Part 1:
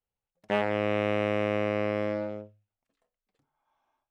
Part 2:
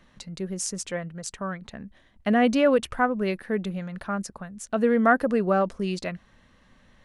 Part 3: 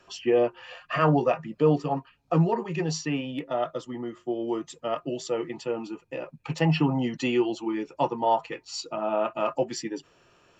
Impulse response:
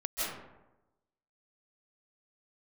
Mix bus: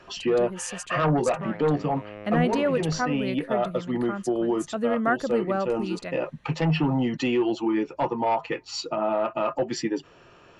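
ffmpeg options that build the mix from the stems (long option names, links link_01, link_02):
-filter_complex "[0:a]adelay=900,volume=-12.5dB[link_01];[1:a]highshelf=frequency=4800:gain=5.5,bandreject=frequency=5400:width=12,volume=-4.5dB,asplit=2[link_02][link_03];[2:a]aeval=exprs='0.335*sin(PI/2*1.78*val(0)/0.335)':channel_layout=same,volume=-0.5dB[link_04];[link_03]apad=whole_len=467160[link_05];[link_04][link_05]sidechaincompress=threshold=-29dB:ratio=5:attack=5.3:release=317[link_06];[link_01][link_06]amix=inputs=2:normalize=0,lowpass=frequency=3600:poles=1,alimiter=limit=-17dB:level=0:latency=1:release=173,volume=0dB[link_07];[link_02][link_07]amix=inputs=2:normalize=0,highshelf=frequency=10000:gain=-9"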